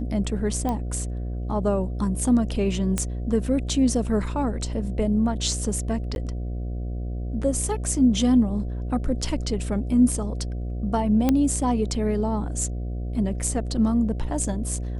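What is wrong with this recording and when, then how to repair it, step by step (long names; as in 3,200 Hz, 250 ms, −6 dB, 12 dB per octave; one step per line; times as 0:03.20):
mains buzz 60 Hz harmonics 12 −29 dBFS
0:00.69: click −15 dBFS
0:02.98: click −10 dBFS
0:06.15–0:06.16: drop-out 11 ms
0:11.29: click −8 dBFS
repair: click removal
hum removal 60 Hz, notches 12
repair the gap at 0:06.15, 11 ms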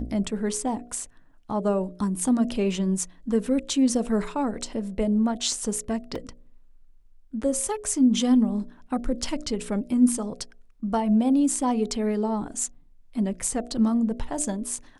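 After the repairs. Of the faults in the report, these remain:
none of them is left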